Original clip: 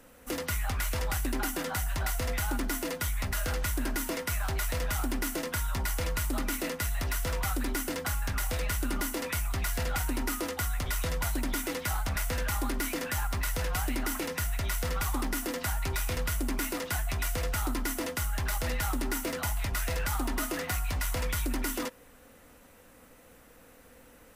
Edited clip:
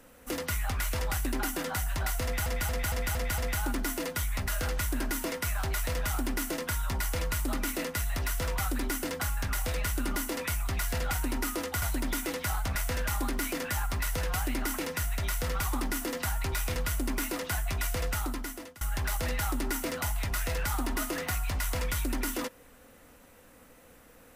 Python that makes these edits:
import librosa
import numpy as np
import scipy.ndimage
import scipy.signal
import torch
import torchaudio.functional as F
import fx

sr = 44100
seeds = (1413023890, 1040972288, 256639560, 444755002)

y = fx.edit(x, sr, fx.stutter(start_s=2.23, slice_s=0.23, count=6),
    fx.cut(start_s=10.67, length_s=0.56),
    fx.fade_out_to(start_s=17.52, length_s=0.7, floor_db=-23.0), tone=tone)